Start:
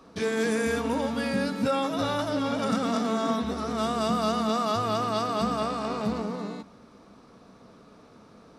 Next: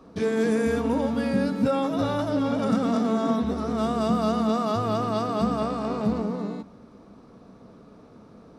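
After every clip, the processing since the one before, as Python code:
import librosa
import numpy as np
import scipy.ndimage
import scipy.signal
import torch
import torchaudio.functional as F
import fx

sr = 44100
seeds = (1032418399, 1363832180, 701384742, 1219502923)

y = fx.tilt_shelf(x, sr, db=5.0, hz=920.0)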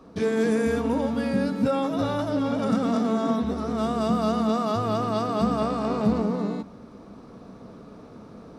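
y = fx.rider(x, sr, range_db=10, speed_s=2.0)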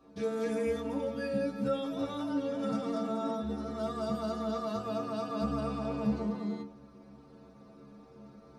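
y = fx.stiff_resonator(x, sr, f0_hz=67.0, decay_s=0.44, stiffness=0.008)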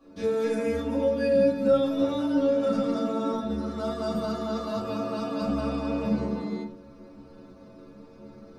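y = fx.room_shoebox(x, sr, seeds[0], volume_m3=140.0, walls='furnished', distance_m=2.3)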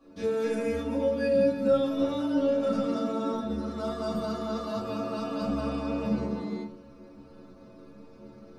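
y = fx.comb_fb(x, sr, f0_hz=120.0, decay_s=1.6, harmonics='all', damping=0.0, mix_pct=70)
y = y * librosa.db_to_amplitude(8.0)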